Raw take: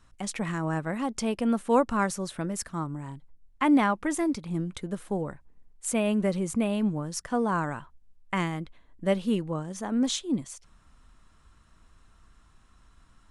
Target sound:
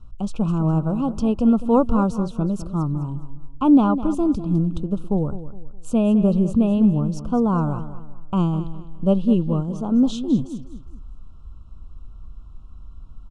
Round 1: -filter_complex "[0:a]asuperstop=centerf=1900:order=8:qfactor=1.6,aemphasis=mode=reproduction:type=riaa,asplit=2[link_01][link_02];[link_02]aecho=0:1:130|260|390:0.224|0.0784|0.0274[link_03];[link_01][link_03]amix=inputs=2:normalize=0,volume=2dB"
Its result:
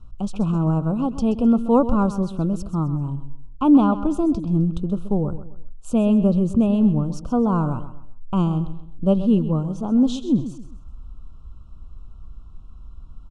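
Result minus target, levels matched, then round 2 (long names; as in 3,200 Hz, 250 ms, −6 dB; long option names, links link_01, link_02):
echo 76 ms early
-filter_complex "[0:a]asuperstop=centerf=1900:order=8:qfactor=1.6,aemphasis=mode=reproduction:type=riaa,asplit=2[link_01][link_02];[link_02]aecho=0:1:206|412|618:0.224|0.0784|0.0274[link_03];[link_01][link_03]amix=inputs=2:normalize=0,volume=2dB"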